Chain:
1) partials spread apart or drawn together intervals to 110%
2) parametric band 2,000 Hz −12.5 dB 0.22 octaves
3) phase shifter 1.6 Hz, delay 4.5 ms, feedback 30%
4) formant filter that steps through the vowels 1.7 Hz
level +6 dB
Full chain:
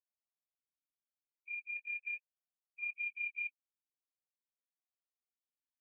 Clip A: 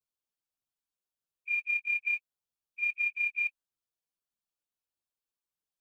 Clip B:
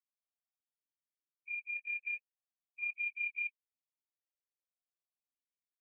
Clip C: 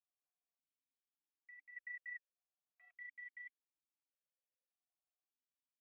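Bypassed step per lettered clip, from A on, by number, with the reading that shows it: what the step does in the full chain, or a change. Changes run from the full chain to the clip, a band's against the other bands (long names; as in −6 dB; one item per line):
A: 4, change in integrated loudness +9.5 LU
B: 2, change in integrated loudness +2.0 LU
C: 1, change in crest factor +1.5 dB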